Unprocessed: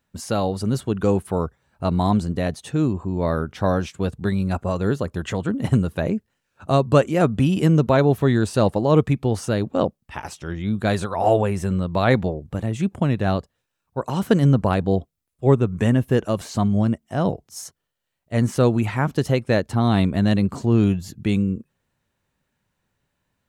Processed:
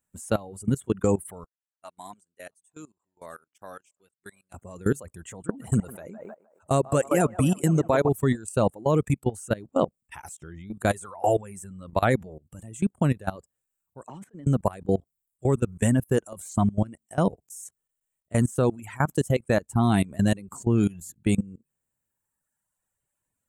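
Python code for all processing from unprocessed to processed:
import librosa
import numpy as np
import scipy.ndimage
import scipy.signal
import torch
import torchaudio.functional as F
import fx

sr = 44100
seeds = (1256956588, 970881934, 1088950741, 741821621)

y = fx.chain(x, sr, fx.highpass(hz=1200.0, slope=6),
    fx.echo_single(ms=657, db=-21.0),
    fx.upward_expand(threshold_db=-42.0, expansion=2.5), at=(1.44, 4.54))
y = fx.chain(y, sr, fx.low_shelf(hz=63.0, db=-5.5),
    fx.echo_banded(ms=155, feedback_pct=64, hz=830.0, wet_db=-3.5), at=(5.31, 8.09))
y = fx.chain(y, sr, fx.highpass(hz=200.0, slope=12),
    fx.spacing_loss(db_at_10k=24),
    fx.over_compress(threshold_db=-29.0, ratio=-1.0), at=(14.06, 14.47))
y = fx.dereverb_blind(y, sr, rt60_s=1.6)
y = fx.high_shelf_res(y, sr, hz=6200.0, db=10.0, q=3.0)
y = fx.level_steps(y, sr, step_db=21)
y = F.gain(torch.from_numpy(y), 1.0).numpy()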